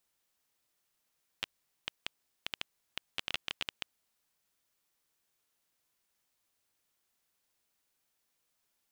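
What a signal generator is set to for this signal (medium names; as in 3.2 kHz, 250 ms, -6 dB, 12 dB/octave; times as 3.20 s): random clicks 7.4 per s -16 dBFS 2.81 s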